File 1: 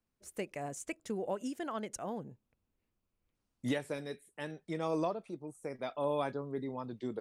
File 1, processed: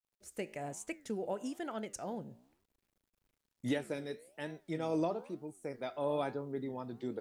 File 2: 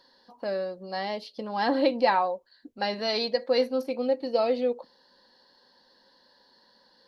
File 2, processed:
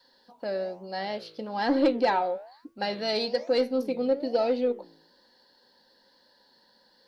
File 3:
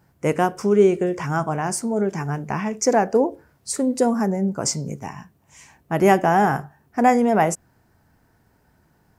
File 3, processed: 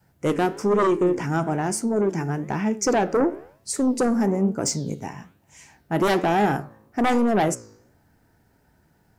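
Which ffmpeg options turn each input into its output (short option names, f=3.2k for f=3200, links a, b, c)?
-af "bandreject=f=1.1k:w=7,adynamicequalizer=threshold=0.0158:dfrequency=320:dqfactor=1.8:tfrequency=320:tqfactor=1.8:attack=5:release=100:ratio=0.375:range=3.5:mode=boostabove:tftype=bell,aeval=exprs='0.596*sin(PI/2*2*val(0)/0.596)':c=same,flanger=delay=8.9:depth=9.9:regen=86:speed=1.1:shape=sinusoidal,acrusher=bits=11:mix=0:aa=0.000001,volume=-6.5dB"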